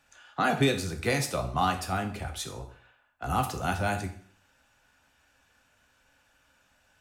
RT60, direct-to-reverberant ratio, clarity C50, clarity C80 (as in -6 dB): 0.50 s, 4.5 dB, 11.0 dB, 14.0 dB